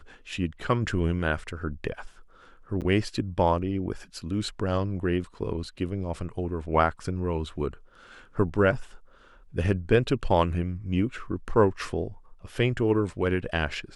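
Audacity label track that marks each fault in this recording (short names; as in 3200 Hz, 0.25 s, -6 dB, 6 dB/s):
2.810000	2.820000	gap 8.2 ms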